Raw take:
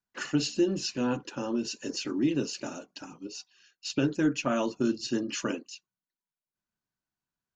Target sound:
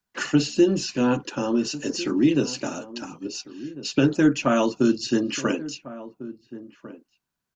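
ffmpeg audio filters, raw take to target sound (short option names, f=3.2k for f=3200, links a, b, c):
-filter_complex "[0:a]acrossover=split=120|2000[a][b][c];[c]alimiter=level_in=4.5dB:limit=-24dB:level=0:latency=1:release=73,volume=-4.5dB[d];[a][b][d]amix=inputs=3:normalize=0,asplit=2[e][f];[f]adelay=1399,volume=-16dB,highshelf=f=4k:g=-31.5[g];[e][g]amix=inputs=2:normalize=0,volume=7.5dB"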